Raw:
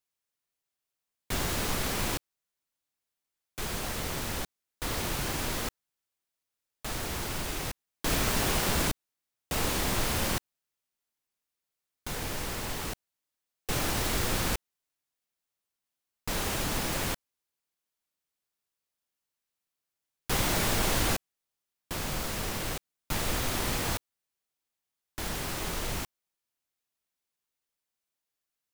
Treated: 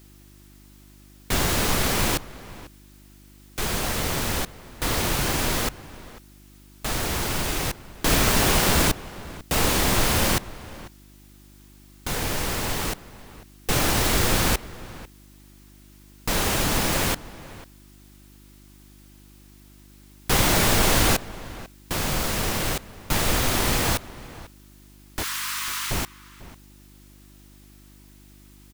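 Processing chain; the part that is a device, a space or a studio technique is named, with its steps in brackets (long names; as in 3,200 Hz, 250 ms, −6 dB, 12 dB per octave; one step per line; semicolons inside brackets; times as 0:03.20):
0:25.23–0:25.91: Butterworth high-pass 990 Hz 72 dB per octave
video cassette with head-switching buzz (hum with harmonics 50 Hz, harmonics 7, −59 dBFS −4 dB per octave; white noise bed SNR 31 dB)
slap from a distant wall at 85 metres, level −17 dB
level +8 dB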